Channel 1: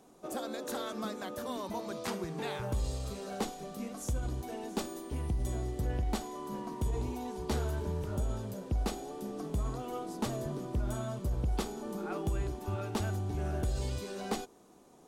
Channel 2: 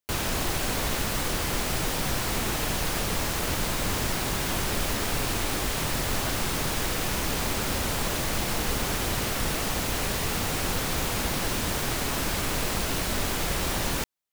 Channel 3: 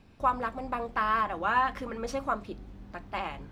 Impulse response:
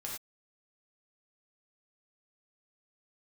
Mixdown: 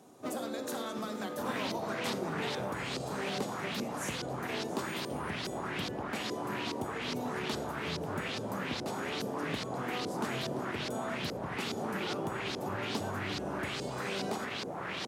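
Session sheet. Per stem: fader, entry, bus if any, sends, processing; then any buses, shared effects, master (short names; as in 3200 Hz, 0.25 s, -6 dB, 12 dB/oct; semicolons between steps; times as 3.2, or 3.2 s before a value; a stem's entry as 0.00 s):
-0.5 dB, 0.00 s, send -4.5 dB, compressor 4:1, threshold -36 dBFS, peak gain reduction 7.5 dB
-8.0 dB, 1.30 s, no send, wavefolder -23.5 dBFS; LFO low-pass saw up 2.4 Hz 410–5100 Hz
-7.0 dB, 0.00 s, no send, median filter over 25 samples; running maximum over 65 samples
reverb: on, pre-delay 3 ms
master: HPF 120 Hz 24 dB/oct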